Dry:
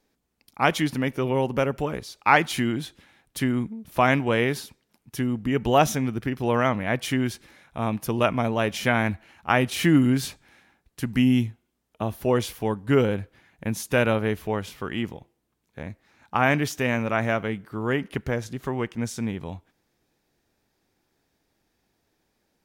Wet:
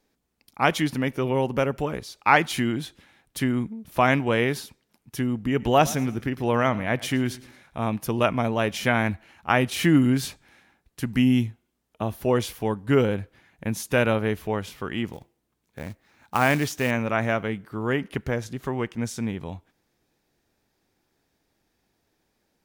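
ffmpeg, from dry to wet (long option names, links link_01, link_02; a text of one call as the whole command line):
ffmpeg -i in.wav -filter_complex "[0:a]asettb=1/sr,asplit=3[link_01][link_02][link_03];[link_01]atrim=end=5.484[link_04];[link_02]atrim=start=5.48:end=7.9,asetpts=PTS-STARTPTS,afade=type=in:duration=0.004:curve=qsin,afade=type=out:start_time=2.416:duration=0.004:curve=qsin,aecho=1:1:111|222|333:0.106|0.0403|0.0153,atrim=end_sample=106722[link_05];[link_03]atrim=start=7.896[link_06];[link_04][link_05]acrossfade=duration=0.004:curve1=hsin:curve2=qsin[link_07];[link_07][link_06]acrossfade=duration=0.004:curve1=qsin:curve2=hsin,asettb=1/sr,asplit=3[link_08][link_09][link_10];[link_08]atrim=end=15.124[link_11];[link_09]atrim=start=15.12:end=16.91,asetpts=PTS-STARTPTS,afade=type=in:duration=0.004:curve=qsin,afade=type=out:start_time=1.786:duration=0.004:curve=qsin,acrusher=bits=4:mode=log:mix=0:aa=0.000001[link_12];[link_10]atrim=start=16.906[link_13];[link_11][link_12]acrossfade=duration=0.004:curve1=hsin:curve2=qsin[link_14];[link_14][link_13]acrossfade=duration=0.004:curve1=qsin:curve2=hsin" out.wav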